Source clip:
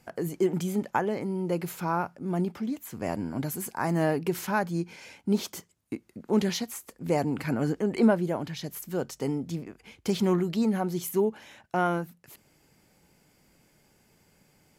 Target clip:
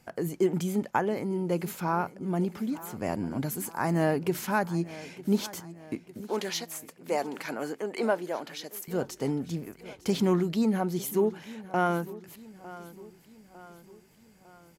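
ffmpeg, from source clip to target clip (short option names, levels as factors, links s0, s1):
-filter_complex "[0:a]asettb=1/sr,asplit=3[s0][s1][s2];[s0]atrim=end=6.284[s3];[s1]atrim=start=6.28:end=8.88,asetpts=PTS-STARTPTS,afade=t=in:d=0.004:c=qsin,afade=t=out:st=2.596:d=0.004:c=qsin,highpass=450[s4];[s2]atrim=start=8.876[s5];[s3][s4]acrossfade=d=0.004:c1=hsin:c2=qsin[s6];[s6][s5]acrossfade=d=0.004:c1=qsin:c2=hsin,aecho=1:1:903|1806|2709|3612:0.133|0.068|0.0347|0.0177"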